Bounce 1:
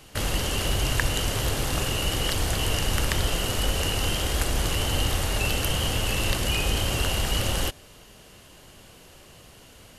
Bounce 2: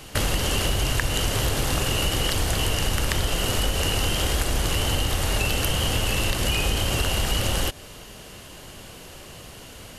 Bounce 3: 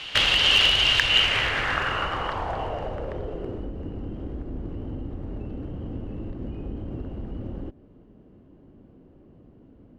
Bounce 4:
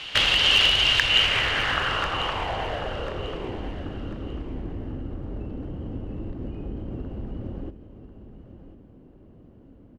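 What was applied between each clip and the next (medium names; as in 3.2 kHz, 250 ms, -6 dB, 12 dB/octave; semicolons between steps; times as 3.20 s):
compression, threshold -27 dBFS, peak gain reduction 9 dB; trim +7.5 dB
low-pass sweep 3.2 kHz -> 280 Hz, 1.01–3.78 s; one-sided clip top -13 dBFS; tilt shelf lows -8 dB, about 720 Hz; trim -2 dB
feedback delay 1043 ms, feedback 28%, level -13 dB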